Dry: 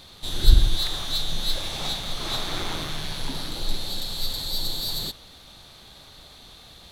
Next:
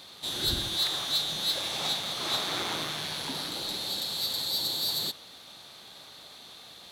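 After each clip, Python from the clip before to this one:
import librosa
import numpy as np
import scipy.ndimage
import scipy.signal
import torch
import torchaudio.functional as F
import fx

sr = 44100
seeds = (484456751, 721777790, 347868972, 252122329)

y = scipy.signal.sosfilt(scipy.signal.butter(2, 120.0, 'highpass', fs=sr, output='sos'), x)
y = fx.low_shelf(y, sr, hz=220.0, db=-8.5)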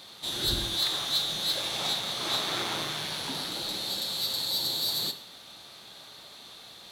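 y = fx.rev_plate(x, sr, seeds[0], rt60_s=0.53, hf_ratio=0.95, predelay_ms=0, drr_db=8.0)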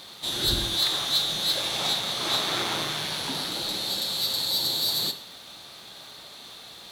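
y = fx.dmg_crackle(x, sr, seeds[1], per_s=440.0, level_db=-47.0)
y = y * 10.0 ** (3.5 / 20.0)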